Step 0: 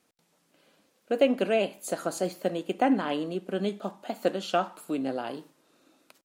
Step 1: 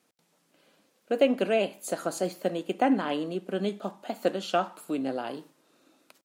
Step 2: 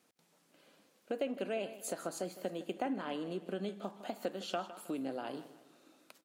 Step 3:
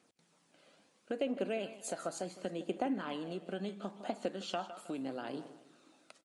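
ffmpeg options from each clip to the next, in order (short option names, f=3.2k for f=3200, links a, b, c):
-af "highpass=100"
-af "acompressor=threshold=-37dB:ratio=2.5,aecho=1:1:158|316|474|632:0.178|0.0747|0.0314|0.0132,volume=-1.5dB"
-af "aphaser=in_gain=1:out_gain=1:delay=1.6:decay=0.31:speed=0.73:type=triangular,aresample=22050,aresample=44100"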